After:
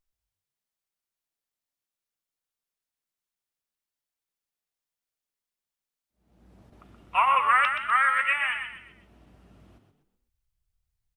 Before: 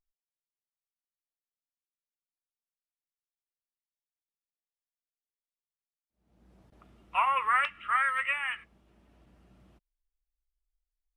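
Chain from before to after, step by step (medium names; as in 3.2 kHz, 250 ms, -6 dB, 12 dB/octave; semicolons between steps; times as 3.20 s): 7.89–8.42 s: high-pass 120 Hz 24 dB/octave; on a send: frequency-shifting echo 125 ms, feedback 37%, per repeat +44 Hz, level -7 dB; on the sum: trim +4.5 dB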